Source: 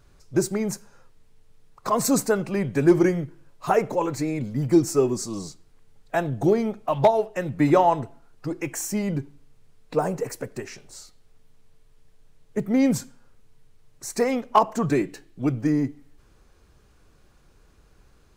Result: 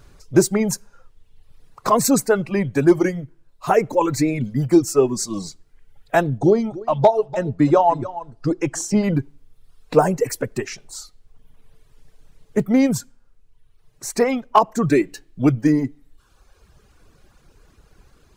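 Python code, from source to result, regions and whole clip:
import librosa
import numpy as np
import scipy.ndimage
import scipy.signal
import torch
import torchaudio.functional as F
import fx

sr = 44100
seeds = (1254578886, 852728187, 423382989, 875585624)

y = fx.chain(x, sr, fx.lowpass(hz=6400.0, slope=12),
    fx.peak_eq(hz=2200.0, db=-7.5, octaves=1.1),
    fx.echo_single(ms=292, db=-13.5), at=(6.38, 9.04))
y = fx.dereverb_blind(y, sr, rt60_s=1.1)
y = fx.rider(y, sr, range_db=3, speed_s=0.5)
y = y * 10.0 ** (6.0 / 20.0)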